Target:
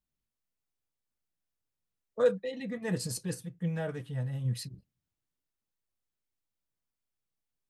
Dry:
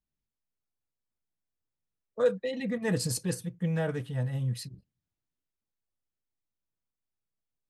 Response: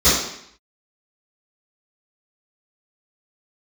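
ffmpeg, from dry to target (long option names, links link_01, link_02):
-filter_complex "[0:a]asplit=3[link_01][link_02][link_03];[link_01]afade=type=out:start_time=2.39:duration=0.02[link_04];[link_02]flanger=delay=4.8:depth=2.5:regen=74:speed=1.3:shape=sinusoidal,afade=type=in:start_time=2.39:duration=0.02,afade=type=out:start_time=4.44:duration=0.02[link_05];[link_03]afade=type=in:start_time=4.44:duration=0.02[link_06];[link_04][link_05][link_06]amix=inputs=3:normalize=0"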